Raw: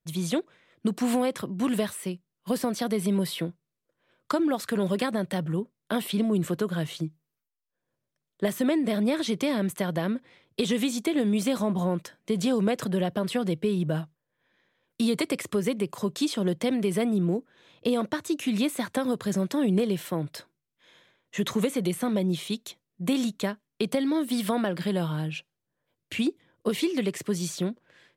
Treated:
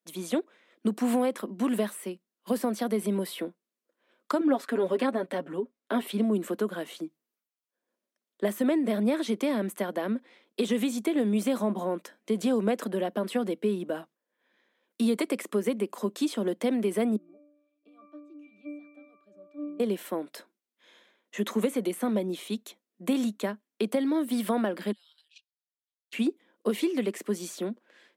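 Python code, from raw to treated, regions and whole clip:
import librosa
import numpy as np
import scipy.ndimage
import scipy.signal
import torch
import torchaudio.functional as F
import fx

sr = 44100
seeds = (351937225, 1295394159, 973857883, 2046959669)

y = fx.chain(x, sr, fx.high_shelf(hz=6600.0, db=-11.5),
    fx.comb(ms=7.3, depth=0.69), at=(4.4, 6.07))
y = fx.chain(y, sr, fx.highpass(hz=190.0, slope=12),
    fx.high_shelf(hz=2500.0, db=8.5),
    fx.octave_resonator(note='D', decay_s=0.79), at=(17.16, 19.8))
y = fx.chain(y, sr, fx.ladder_bandpass(hz=4800.0, resonance_pct=50),
    fx.level_steps(step_db=10), at=(24.92, 26.13))
y = scipy.signal.sosfilt(scipy.signal.ellip(4, 1.0, 40, 210.0, 'highpass', fs=sr, output='sos'), y)
y = fx.dynamic_eq(y, sr, hz=4700.0, q=0.71, threshold_db=-50.0, ratio=4.0, max_db=-6)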